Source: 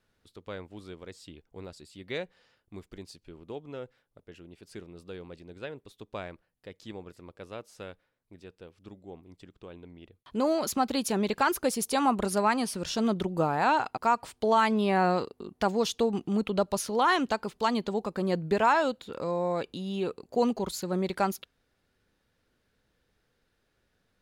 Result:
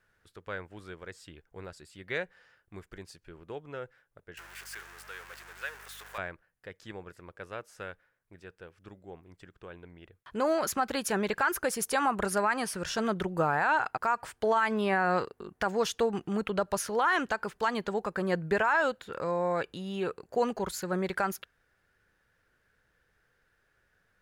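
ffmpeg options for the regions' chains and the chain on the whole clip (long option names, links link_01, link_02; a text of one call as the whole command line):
ffmpeg -i in.wav -filter_complex "[0:a]asettb=1/sr,asplit=3[link_01][link_02][link_03];[link_01]atrim=end=4.374[link_04];[link_02]atrim=start=4.37:end=6.18,asetpts=PTS-STARTPTS,afade=type=in:duration=0.004:curve=qsin,afade=type=out:start_time=1.806:duration=0.004:curve=qsin,aeval=exprs='val(0)+0.5*0.0106*sgn(val(0))':channel_layout=same,highpass=1000,aeval=exprs='val(0)+0.00112*(sin(2*PI*50*n/s)+sin(2*PI*2*50*n/s)/2+sin(2*PI*3*50*n/s)/3+sin(2*PI*4*50*n/s)/4+sin(2*PI*5*50*n/s)/5)':channel_layout=same[link_05];[link_03]atrim=start=6.176[link_06];[link_04][link_05]acrossfade=duration=0.004:curve1=hsin:curve2=qsin[link_07];[link_07][link_06]acrossfade=duration=0.004:curve1=qsin:curve2=hsin,equalizer=frequency=250:width_type=o:width=0.67:gain=-7,equalizer=frequency=1600:width_type=o:width=0.67:gain=10,equalizer=frequency=4000:width_type=o:width=0.67:gain=-5,alimiter=limit=-17dB:level=0:latency=1:release=72" out.wav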